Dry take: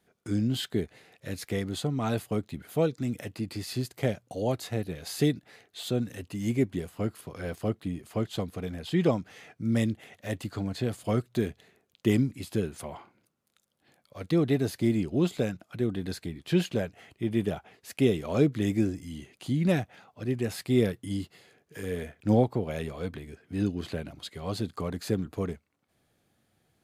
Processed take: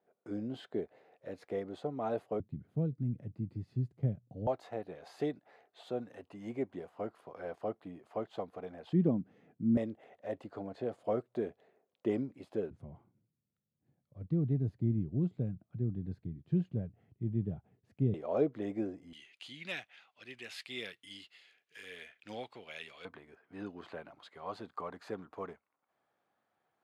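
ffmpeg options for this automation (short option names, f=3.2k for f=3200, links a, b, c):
-af "asetnsamples=n=441:p=0,asendcmd='2.4 bandpass f 130;4.47 bandpass f 740;8.93 bandpass f 220;9.77 bandpass f 600;12.7 bandpass f 120;18.14 bandpass f 640;19.13 bandpass f 2800;23.05 bandpass f 990',bandpass=f=600:t=q:w=1.6:csg=0"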